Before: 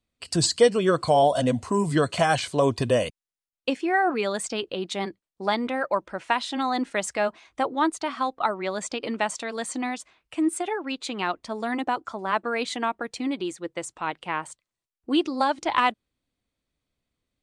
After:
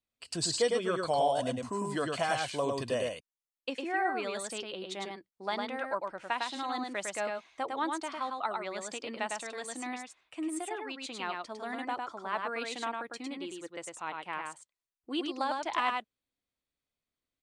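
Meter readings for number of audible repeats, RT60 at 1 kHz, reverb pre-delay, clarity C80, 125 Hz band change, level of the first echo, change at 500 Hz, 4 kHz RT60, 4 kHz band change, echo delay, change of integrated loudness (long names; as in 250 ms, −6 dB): 1, no reverb audible, no reverb audible, no reverb audible, −13.5 dB, −3.5 dB, −9.0 dB, no reverb audible, −7.0 dB, 104 ms, −8.5 dB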